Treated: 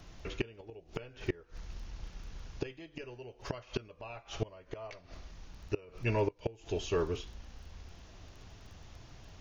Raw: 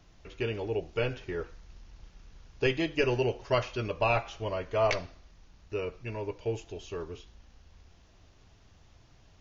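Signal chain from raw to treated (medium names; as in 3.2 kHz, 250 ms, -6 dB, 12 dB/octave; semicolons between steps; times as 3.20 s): crackle 14 per s -54 dBFS; inverted gate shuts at -26 dBFS, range -26 dB; trim +6.5 dB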